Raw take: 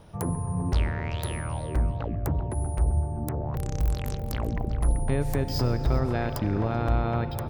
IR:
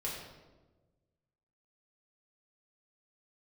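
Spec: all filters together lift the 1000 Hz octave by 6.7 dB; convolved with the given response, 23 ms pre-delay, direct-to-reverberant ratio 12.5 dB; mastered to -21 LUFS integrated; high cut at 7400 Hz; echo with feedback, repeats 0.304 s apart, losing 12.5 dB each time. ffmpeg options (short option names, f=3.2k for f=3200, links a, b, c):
-filter_complex "[0:a]lowpass=7.4k,equalizer=f=1k:t=o:g=9,aecho=1:1:304|608|912:0.237|0.0569|0.0137,asplit=2[a][b];[1:a]atrim=start_sample=2205,adelay=23[c];[b][c]afir=irnorm=-1:irlink=0,volume=-15dB[d];[a][d]amix=inputs=2:normalize=0,volume=6dB"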